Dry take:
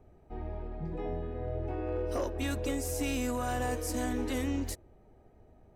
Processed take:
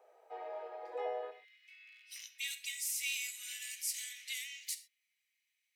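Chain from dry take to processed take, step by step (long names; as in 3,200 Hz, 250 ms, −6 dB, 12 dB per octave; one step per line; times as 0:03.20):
Chebyshev high-pass filter 470 Hz, order 5, from 0:01.30 2,100 Hz
convolution reverb, pre-delay 6 ms, DRR 8.5 dB
level +3 dB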